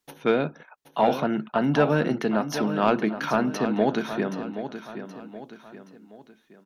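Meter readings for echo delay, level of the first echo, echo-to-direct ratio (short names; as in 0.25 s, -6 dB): 0.774 s, -10.5 dB, -9.5 dB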